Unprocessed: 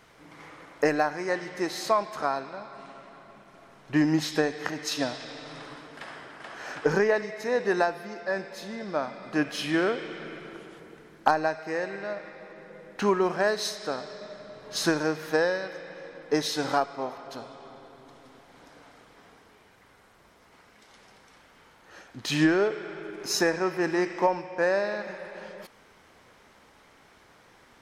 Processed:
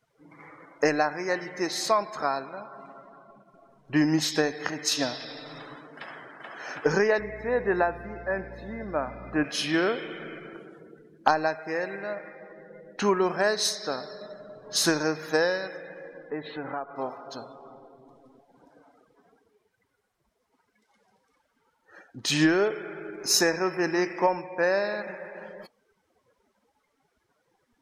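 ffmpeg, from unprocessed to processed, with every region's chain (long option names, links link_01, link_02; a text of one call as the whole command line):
ffmpeg -i in.wav -filter_complex "[0:a]asettb=1/sr,asplit=3[link_01][link_02][link_03];[link_01]atrim=end=7.194[link_04];[link_02]atrim=start=7.19:end=9.44,asetpts=PTS-STARTPTS,afade=type=in:duration=0.004:curve=qsin,afade=type=out:start_time=2.246:duration=0.004:curve=qsin,acrossover=split=2800[link_05][link_06];[link_06]acompressor=threshold=-54dB:ratio=4:attack=1:release=60[link_07];[link_05][link_07]amix=inputs=2:normalize=0,highshelf=frequency=5100:gain=-5,aeval=exprs='val(0)+0.00631*(sin(2*PI*60*n/s)+sin(2*PI*2*60*n/s)/2+sin(2*PI*3*60*n/s)/3+sin(2*PI*4*60*n/s)/4+sin(2*PI*5*60*n/s)/5)':channel_layout=same[link_08];[link_03]atrim=start=9.436[link_09];[link_04][link_08]acrossfade=duration=0.004:curve1=hsin:curve2=qsin[link_10];[link_10][link_09]acrossfade=duration=0.004:curve1=qsin:curve2=hsin,asettb=1/sr,asplit=3[link_11][link_12][link_13];[link_11]atrim=end=16.304[link_14];[link_12]atrim=start=16.3:end=16.96,asetpts=PTS-STARTPTS,afade=type=in:duration=0.004:curve=qsin,afade=type=out:start_time=0.656:duration=0.004:curve=qsin,lowpass=frequency=2600:width=0.5412,lowpass=frequency=2600:width=1.3066,acompressor=threshold=-35dB:ratio=2:attack=3.2:release=140:knee=1:detection=peak[link_15];[link_13]atrim=start=16.956[link_16];[link_14][link_15]acrossfade=duration=0.004:curve1=hsin:curve2=qsin[link_17];[link_17][link_16]acrossfade=duration=0.004:curve1=qsin:curve2=hsin,afftdn=noise_reduction=23:noise_floor=-47,highshelf=frequency=4700:gain=10.5" out.wav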